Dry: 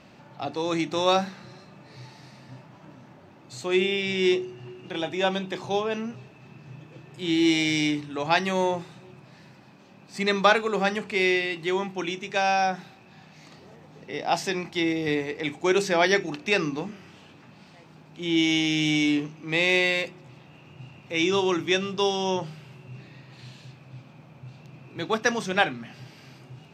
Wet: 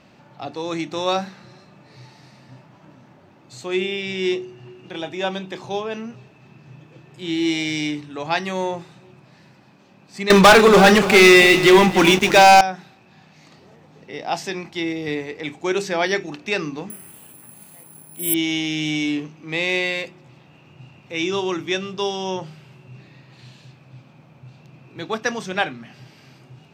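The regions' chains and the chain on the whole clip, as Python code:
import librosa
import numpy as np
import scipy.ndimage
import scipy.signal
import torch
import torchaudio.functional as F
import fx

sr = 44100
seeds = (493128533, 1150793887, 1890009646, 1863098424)

y = fx.chain(x, sr, fx.leveller(passes=5),
    fx.echo_crushed(ms=292, feedback_pct=35, bits=6, wet_db=-12), at=(10.3, 12.61))
y = fx.chain(y, sr, fx.high_shelf(hz=6100.0, db=-8.5),
    fx.resample_bad(factor=4, down='filtered', up='zero_stuff'), at=(16.9, 18.34))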